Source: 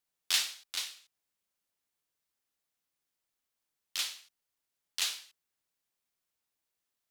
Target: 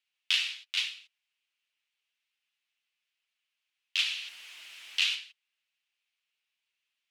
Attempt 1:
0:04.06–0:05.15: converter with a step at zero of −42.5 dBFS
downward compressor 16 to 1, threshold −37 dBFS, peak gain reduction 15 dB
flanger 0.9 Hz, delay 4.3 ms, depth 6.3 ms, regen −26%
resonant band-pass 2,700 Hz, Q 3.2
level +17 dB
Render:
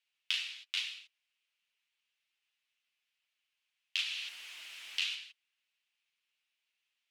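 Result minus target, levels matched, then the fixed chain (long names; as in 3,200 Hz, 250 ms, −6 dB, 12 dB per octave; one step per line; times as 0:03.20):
downward compressor: peak gain reduction +8 dB
0:04.06–0:05.15: converter with a step at zero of −42.5 dBFS
downward compressor 16 to 1, threshold −28.5 dBFS, peak gain reduction 7 dB
flanger 0.9 Hz, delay 4.3 ms, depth 6.3 ms, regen −26%
resonant band-pass 2,700 Hz, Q 3.2
level +17 dB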